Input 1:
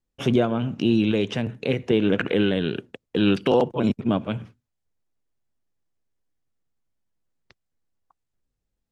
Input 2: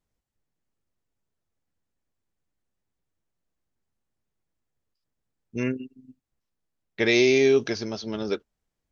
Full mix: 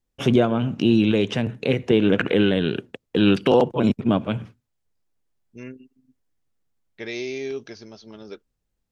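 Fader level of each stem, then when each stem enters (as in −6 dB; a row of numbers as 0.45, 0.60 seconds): +2.5, −11.0 decibels; 0.00, 0.00 seconds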